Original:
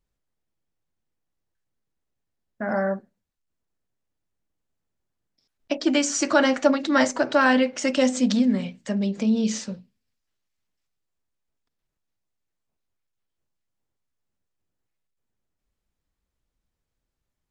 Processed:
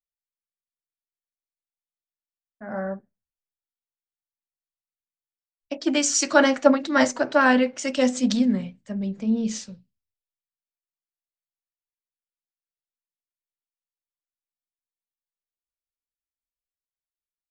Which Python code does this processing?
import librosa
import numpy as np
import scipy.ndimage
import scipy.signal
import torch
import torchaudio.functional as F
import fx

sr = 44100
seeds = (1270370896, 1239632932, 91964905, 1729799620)

y = fx.wow_flutter(x, sr, seeds[0], rate_hz=2.1, depth_cents=28.0)
y = fx.band_widen(y, sr, depth_pct=100)
y = y * 10.0 ** (-1.5 / 20.0)